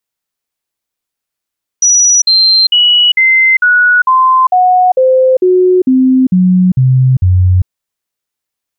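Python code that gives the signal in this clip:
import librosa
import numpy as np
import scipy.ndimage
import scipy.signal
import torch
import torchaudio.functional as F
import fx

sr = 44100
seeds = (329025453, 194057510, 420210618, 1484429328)

y = fx.stepped_sweep(sr, from_hz=5860.0, direction='down', per_octave=2, tones=13, dwell_s=0.4, gap_s=0.05, level_db=-4.5)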